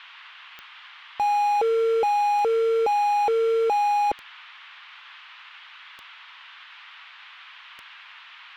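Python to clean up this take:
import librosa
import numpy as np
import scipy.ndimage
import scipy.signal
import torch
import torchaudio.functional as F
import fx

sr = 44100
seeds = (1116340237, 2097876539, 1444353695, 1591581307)

y = fx.fix_declick_ar(x, sr, threshold=10.0)
y = fx.noise_reduce(y, sr, print_start_s=6.22, print_end_s=6.72, reduce_db=24.0)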